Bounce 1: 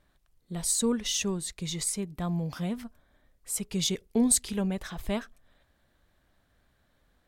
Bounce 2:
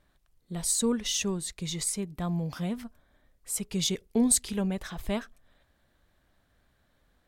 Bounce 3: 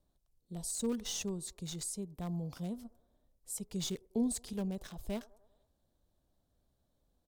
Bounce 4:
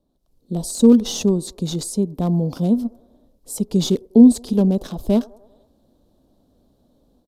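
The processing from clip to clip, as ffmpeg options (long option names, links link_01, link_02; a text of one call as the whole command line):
ffmpeg -i in.wav -af anull out.wav
ffmpeg -i in.wav -filter_complex "[0:a]acrossover=split=360|1000|3500[link_01][link_02][link_03][link_04];[link_02]aecho=1:1:98|196|294|392|490:0.106|0.0625|0.0369|0.0218|0.0128[link_05];[link_03]acrusher=bits=4:dc=4:mix=0:aa=0.000001[link_06];[link_04]alimiter=limit=-22dB:level=0:latency=1:release=26[link_07];[link_01][link_05][link_06][link_07]amix=inputs=4:normalize=0,volume=-7.5dB" out.wav
ffmpeg -i in.wav -af "equalizer=frequency=250:width_type=o:width=1:gain=12,equalizer=frequency=500:width_type=o:width=1:gain=6,equalizer=frequency=1000:width_type=o:width=1:gain=3,equalizer=frequency=2000:width_type=o:width=1:gain=-8,equalizer=frequency=4000:width_type=o:width=1:gain=4,equalizer=frequency=8000:width_type=o:width=1:gain=-4,aresample=32000,aresample=44100,dynaudnorm=framelen=160:gausssize=3:maxgain=11dB,volume=1.5dB" out.wav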